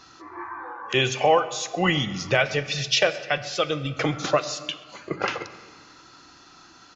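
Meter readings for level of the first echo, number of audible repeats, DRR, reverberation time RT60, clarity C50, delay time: −22.0 dB, 2, 11.0 dB, 1.7 s, 13.0 dB, 131 ms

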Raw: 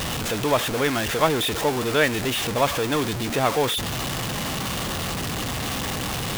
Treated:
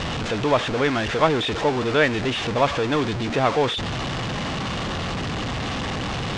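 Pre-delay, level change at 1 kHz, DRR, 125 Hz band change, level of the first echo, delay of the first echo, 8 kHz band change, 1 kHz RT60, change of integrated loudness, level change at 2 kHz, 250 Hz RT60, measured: no reverb audible, +1.5 dB, no reverb audible, +2.0 dB, no echo audible, no echo audible, −9.5 dB, no reverb audible, +0.5 dB, +1.0 dB, no reverb audible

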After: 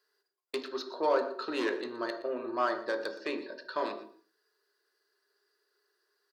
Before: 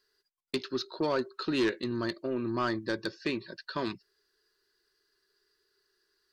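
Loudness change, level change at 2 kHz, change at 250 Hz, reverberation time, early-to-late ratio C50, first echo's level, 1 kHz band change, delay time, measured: −1.0 dB, −0.5 dB, −6.0 dB, 0.50 s, 9.5 dB, −17.0 dB, +3.5 dB, 119 ms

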